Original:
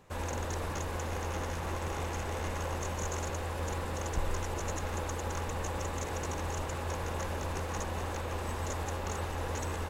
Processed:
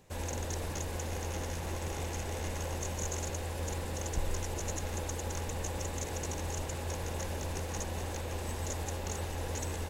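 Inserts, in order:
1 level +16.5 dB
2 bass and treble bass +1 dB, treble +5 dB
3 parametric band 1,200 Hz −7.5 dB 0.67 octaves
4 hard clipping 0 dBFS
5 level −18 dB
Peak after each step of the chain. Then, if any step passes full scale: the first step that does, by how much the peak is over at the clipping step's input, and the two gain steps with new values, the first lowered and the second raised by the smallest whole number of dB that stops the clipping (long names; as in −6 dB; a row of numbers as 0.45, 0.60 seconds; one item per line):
−3.0, −2.0, −2.5, −2.5, −20.5 dBFS
no step passes full scale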